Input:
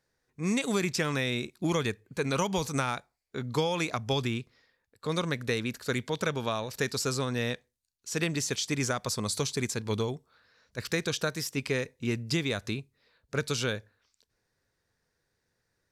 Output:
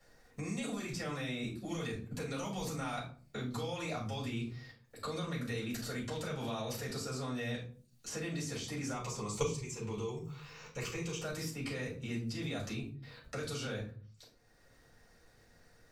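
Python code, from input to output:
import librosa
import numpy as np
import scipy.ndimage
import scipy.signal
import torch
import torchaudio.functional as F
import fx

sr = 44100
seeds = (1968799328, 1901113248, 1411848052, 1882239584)

y = fx.ripple_eq(x, sr, per_octave=0.73, db=12, at=(8.92, 11.23))
y = fx.level_steps(y, sr, step_db=23)
y = fx.room_shoebox(y, sr, seeds[0], volume_m3=210.0, walls='furnished', distance_m=6.4)
y = fx.band_squash(y, sr, depth_pct=70)
y = y * librosa.db_to_amplitude(-5.5)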